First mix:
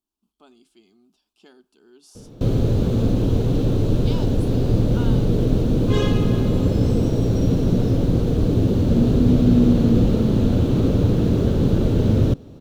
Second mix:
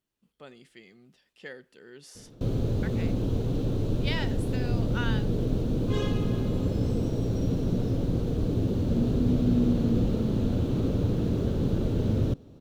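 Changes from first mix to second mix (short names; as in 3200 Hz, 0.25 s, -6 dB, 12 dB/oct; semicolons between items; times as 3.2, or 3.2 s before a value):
speech: remove fixed phaser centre 510 Hz, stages 6; background -8.5 dB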